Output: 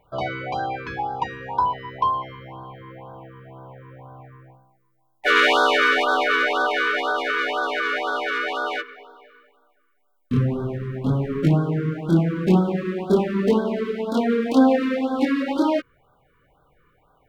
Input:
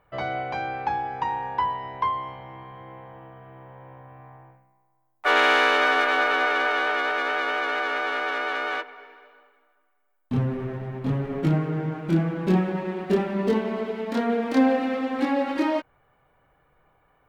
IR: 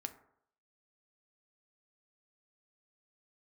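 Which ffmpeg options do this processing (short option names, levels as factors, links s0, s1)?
-af "afftfilt=real='re*(1-between(b*sr/1024,680*pow(2300/680,0.5+0.5*sin(2*PI*2*pts/sr))/1.41,680*pow(2300/680,0.5+0.5*sin(2*PI*2*pts/sr))*1.41))':imag='im*(1-between(b*sr/1024,680*pow(2300/680,0.5+0.5*sin(2*PI*2*pts/sr))/1.41,680*pow(2300/680,0.5+0.5*sin(2*PI*2*pts/sr))*1.41))':win_size=1024:overlap=0.75,volume=1.58"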